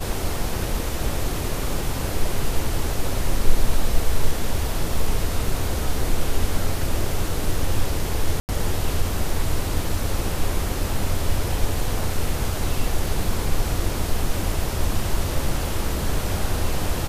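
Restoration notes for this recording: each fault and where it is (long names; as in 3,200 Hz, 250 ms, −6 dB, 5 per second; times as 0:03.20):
0:08.40–0:08.49: drop-out 89 ms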